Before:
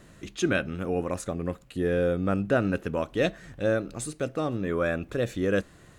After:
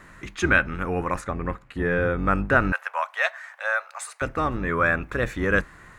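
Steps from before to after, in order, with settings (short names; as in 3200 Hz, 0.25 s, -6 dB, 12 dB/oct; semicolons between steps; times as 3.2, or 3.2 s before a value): octaver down 2 oct, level -1 dB; 1.2–2.19 high shelf 6400 Hz -10.5 dB; 2.72–4.22 steep high-pass 610 Hz 48 dB/oct; band shelf 1400 Hz +11.5 dB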